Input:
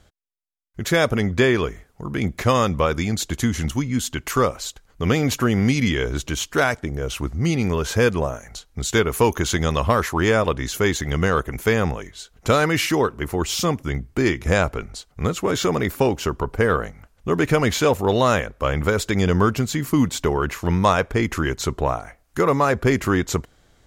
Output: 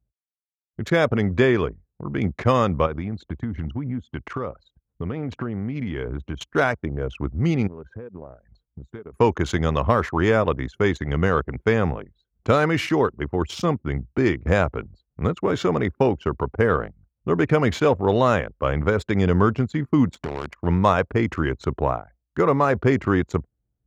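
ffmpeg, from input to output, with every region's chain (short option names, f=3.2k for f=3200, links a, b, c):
-filter_complex "[0:a]asettb=1/sr,asplit=3[a][b][c];[a]atrim=end=2.864[d];[b]atrim=start=2.86:end=6.41,asetpts=PTS-STARTPTS,afade=t=in:d=0.004:c=qsin,afade=t=out:st=3.546:d=0.004:c=qsin,lowpass=f=3.8k:p=1,acompressor=threshold=-22dB:ratio=12:attack=3.2:release=140:knee=1:detection=peak[e];[c]atrim=start=6.406[f];[d][e]acrossfade=d=0.004:c1=hsin:c2=qsin[g];[g][f]acrossfade=d=0.004:c1=qsin:c2=hsin,asettb=1/sr,asplit=3[h][i][j];[h]atrim=end=7.674[k];[i]atrim=start=7.67:end=9.14,asetpts=PTS-STARTPTS,afade=t=in:d=0.004:c=qsin,afade=t=out:st=1.466:d=0.004:c=qsin,equalizer=f=81:w=4.5:g=-8,acompressor=threshold=-31dB:ratio=8:attack=3.2:release=140:knee=1:detection=peak[l];[j]atrim=start=9.136[m];[k][l]acrossfade=d=0.004:c1=hsin:c2=qsin[n];[n][m]acrossfade=d=0.004:c1=qsin:c2=hsin,asettb=1/sr,asplit=3[o][p][q];[o]atrim=end=20.144[r];[p]atrim=start=20.14:end=20.59,asetpts=PTS-STARTPTS,afade=t=in:d=0.004:c=qsin,afade=t=out:st=0.446:d=0.004:c=qsin,highshelf=f=6.6k:g=4,acompressor=threshold=-25dB:ratio=4:attack=3.2:release=140:knee=1:detection=peak,acrusher=bits=5:dc=4:mix=0:aa=0.000001[s];[q]atrim=start=20.586[t];[r][s]acrossfade=d=0.004:c1=hsin:c2=qsin[u];[u][t]acrossfade=d=0.004:c1=qsin:c2=hsin,lowpass=f=2k:p=1,anlmdn=15.8,highpass=f=62:w=0.5412,highpass=f=62:w=1.3066"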